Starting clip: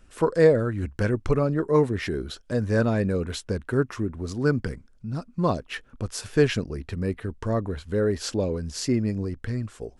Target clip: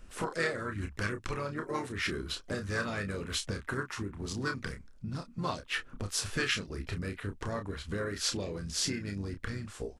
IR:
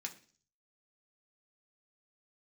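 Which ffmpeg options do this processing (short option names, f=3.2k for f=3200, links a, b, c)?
-filter_complex "[0:a]acrossover=split=1300[a][b];[a]acompressor=threshold=-35dB:ratio=10[c];[c][b]amix=inputs=2:normalize=0,asplit=4[d][e][f][g];[e]asetrate=33038,aresample=44100,atempo=1.33484,volume=-10dB[h];[f]asetrate=37084,aresample=44100,atempo=1.18921,volume=-15dB[i];[g]asetrate=55563,aresample=44100,atempo=0.793701,volume=-17dB[j];[d][h][i][j]amix=inputs=4:normalize=0,asplit=2[k][l];[l]adelay=30,volume=-7dB[m];[k][m]amix=inputs=2:normalize=0"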